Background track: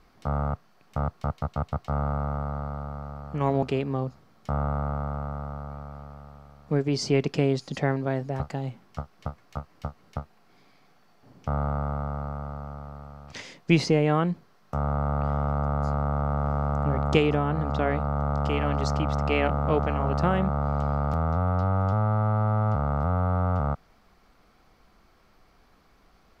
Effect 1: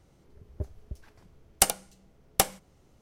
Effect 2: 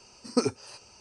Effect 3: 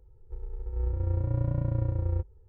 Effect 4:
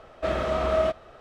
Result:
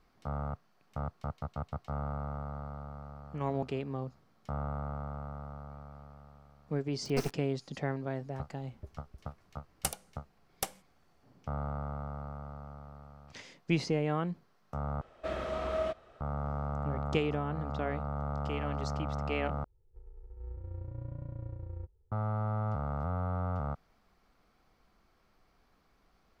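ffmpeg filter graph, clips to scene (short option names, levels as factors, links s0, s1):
-filter_complex "[0:a]volume=0.355[s0];[2:a]acrusher=bits=3:dc=4:mix=0:aa=0.000001[s1];[s0]asplit=3[s2][s3][s4];[s2]atrim=end=15.014[s5];[4:a]atrim=end=1.2,asetpts=PTS-STARTPTS,volume=0.335[s6];[s3]atrim=start=16.206:end=19.644[s7];[3:a]atrim=end=2.48,asetpts=PTS-STARTPTS,volume=0.211[s8];[s4]atrim=start=22.116[s9];[s1]atrim=end=1,asetpts=PTS-STARTPTS,volume=0.376,afade=t=in:d=0.004:c=hsin,afade=t=out:st=0.996:d=0.004:c=hsin,adelay=6800[s10];[1:a]atrim=end=3.01,asetpts=PTS-STARTPTS,volume=0.237,afade=t=in:d=0.004:c=hsin,afade=t=out:st=3.006:d=0.004:c=hsin,adelay=8230[s11];[s5][s6]acrossfade=d=0.004:c1=hsin:c2=hsin[s12];[s12][s7]acrossfade=d=0.004:c1=hsin:c2=hsin[s13];[s13][s8]acrossfade=d=0.004:c1=hsin:c2=hsin[s14];[s14][s9]acrossfade=d=0.004:c1=hsin:c2=hsin[s15];[s15][s10][s11]amix=inputs=3:normalize=0"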